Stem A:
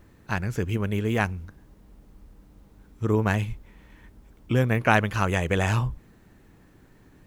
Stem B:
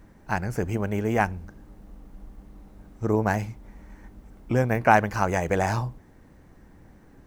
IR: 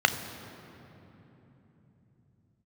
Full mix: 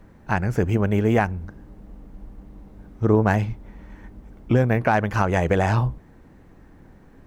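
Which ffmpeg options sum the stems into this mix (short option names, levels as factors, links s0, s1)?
-filter_complex "[0:a]aeval=exprs='0.708*sin(PI/2*2*val(0)/0.708)':c=same,volume=0.282[s0];[1:a]volume=1.26[s1];[s0][s1]amix=inputs=2:normalize=0,highshelf=f=3400:g=-8,alimiter=limit=0.398:level=0:latency=1:release=239"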